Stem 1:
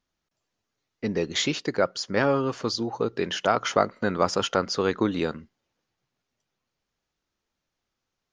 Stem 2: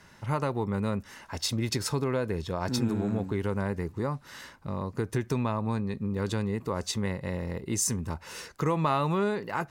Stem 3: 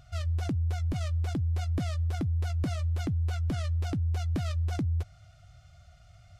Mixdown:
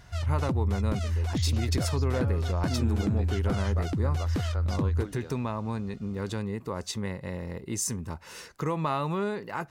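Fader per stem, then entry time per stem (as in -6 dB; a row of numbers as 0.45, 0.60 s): -18.0, -2.5, +1.5 dB; 0.00, 0.00, 0.00 s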